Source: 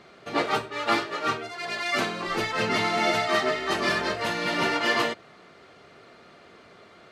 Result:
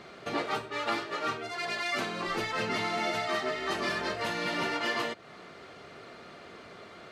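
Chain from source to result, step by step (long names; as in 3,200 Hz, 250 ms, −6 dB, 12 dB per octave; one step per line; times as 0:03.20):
downward compressor 2.5 to 1, threshold −36 dBFS, peak gain reduction 11.5 dB
level +3 dB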